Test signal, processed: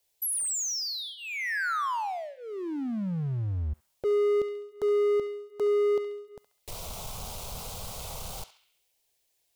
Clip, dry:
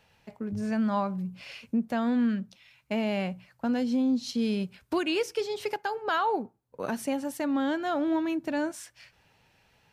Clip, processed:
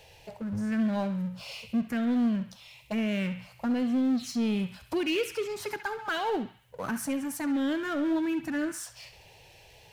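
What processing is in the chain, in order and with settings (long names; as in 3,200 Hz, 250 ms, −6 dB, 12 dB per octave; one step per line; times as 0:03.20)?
phaser swept by the level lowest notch 220 Hz, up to 1,900 Hz, full sweep at −21 dBFS
power curve on the samples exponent 0.7
feedback echo with a band-pass in the loop 68 ms, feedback 62%, band-pass 2,500 Hz, level −9 dB
level −1 dB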